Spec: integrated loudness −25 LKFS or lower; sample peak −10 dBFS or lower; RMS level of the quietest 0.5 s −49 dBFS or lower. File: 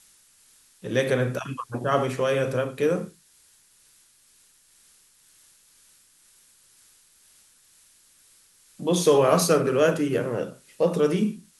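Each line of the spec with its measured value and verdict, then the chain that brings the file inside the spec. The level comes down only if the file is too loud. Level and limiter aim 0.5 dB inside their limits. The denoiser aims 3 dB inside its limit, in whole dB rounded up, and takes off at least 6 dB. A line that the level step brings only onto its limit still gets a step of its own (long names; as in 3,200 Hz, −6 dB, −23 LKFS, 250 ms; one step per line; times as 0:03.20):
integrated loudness −24.0 LKFS: out of spec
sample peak −7.5 dBFS: out of spec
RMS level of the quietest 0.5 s −59 dBFS: in spec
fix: level −1.5 dB
brickwall limiter −10.5 dBFS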